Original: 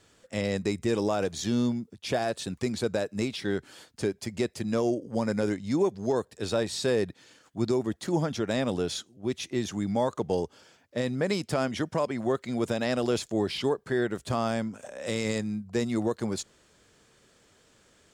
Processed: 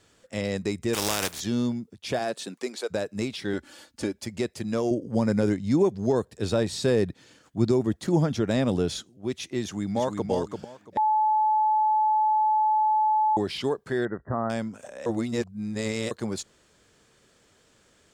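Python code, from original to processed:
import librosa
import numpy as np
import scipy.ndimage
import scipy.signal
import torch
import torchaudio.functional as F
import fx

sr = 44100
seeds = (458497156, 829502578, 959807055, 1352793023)

y = fx.spec_flatten(x, sr, power=0.34, at=(0.93, 1.39), fade=0.02)
y = fx.highpass(y, sr, hz=fx.line((2.19, 120.0), (2.9, 460.0)), slope=24, at=(2.19, 2.9), fade=0.02)
y = fx.comb(y, sr, ms=3.5, depth=0.65, at=(3.53, 4.25))
y = fx.low_shelf(y, sr, hz=320.0, db=8.0, at=(4.91, 9.1))
y = fx.echo_throw(y, sr, start_s=9.62, length_s=0.68, ms=340, feedback_pct=20, wet_db=-5.0)
y = fx.brickwall_lowpass(y, sr, high_hz=2000.0, at=(14.05, 14.5))
y = fx.edit(y, sr, fx.bleep(start_s=10.97, length_s=2.4, hz=862.0, db=-19.0),
    fx.reverse_span(start_s=15.06, length_s=1.05), tone=tone)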